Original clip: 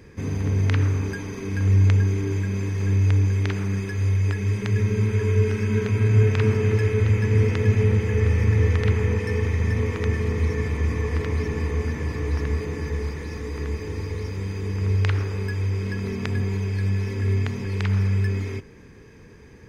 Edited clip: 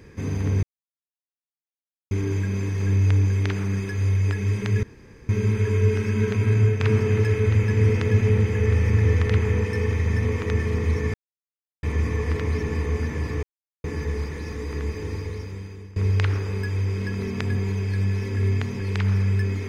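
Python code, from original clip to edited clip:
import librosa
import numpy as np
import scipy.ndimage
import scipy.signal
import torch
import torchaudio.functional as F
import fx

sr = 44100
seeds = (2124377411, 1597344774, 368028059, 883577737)

y = fx.edit(x, sr, fx.silence(start_s=0.63, length_s=1.48),
    fx.insert_room_tone(at_s=4.83, length_s=0.46),
    fx.fade_out_to(start_s=6.09, length_s=0.25, floor_db=-6.0),
    fx.insert_silence(at_s=10.68, length_s=0.69),
    fx.silence(start_s=12.28, length_s=0.41),
    fx.fade_out_to(start_s=13.96, length_s=0.85, floor_db=-19.5), tone=tone)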